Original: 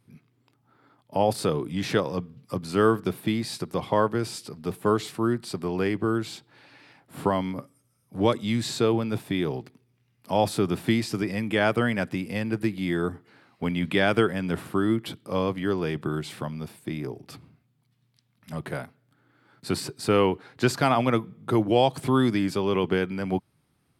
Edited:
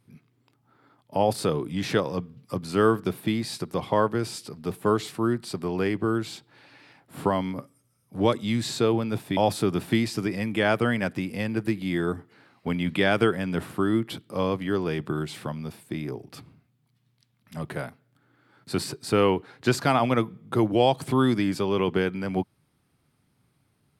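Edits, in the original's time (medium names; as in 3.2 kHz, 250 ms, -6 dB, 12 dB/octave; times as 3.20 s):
9.37–10.33 s: delete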